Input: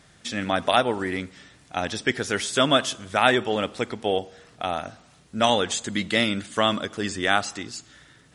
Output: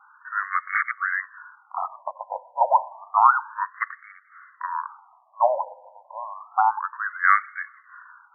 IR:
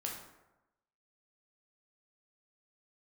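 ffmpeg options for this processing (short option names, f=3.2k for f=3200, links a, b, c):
-filter_complex "[0:a]highpass=f=260:t=q:w=0.5412,highpass=f=260:t=q:w=1.307,lowpass=f=2.7k:t=q:w=0.5176,lowpass=f=2.7k:t=q:w=0.7071,lowpass=f=2.7k:t=q:w=1.932,afreqshift=-330,asettb=1/sr,asplit=3[a][b][c];[a]atrim=end=0.744[d];[b]atrim=start=0.74:end=2.56,asetpts=PTS-STARTPTS,afade=t=in:d=0.004:c=qsin,afade=t=out:st=1.816:d=0.004:c=qsin,aeval=exprs='(mod(7.5*val(0)+1,2)-1)/7.5':c=same[e];[c]atrim=start=2.556[f];[d][e]acrossfade=d=0.004:c1=hsin:c2=qsin[g];[g][f]acrossfade=d=0.004:c1=qsin:c2=hsin,afftfilt=real='re*between(b*sr/1024,710*pow(1600/710,0.5+0.5*sin(2*PI*0.3*pts/sr))/1.41,710*pow(1600/710,0.5+0.5*sin(2*PI*0.3*pts/sr))*1.41)':imag='im*between(b*sr/1024,710*pow(1600/710,0.5+0.5*sin(2*PI*0.3*pts/sr))/1.41,710*pow(1600/710,0.5+0.5*sin(2*PI*0.3*pts/sr))*1.41)':win_size=1024:overlap=0.75,volume=9dB"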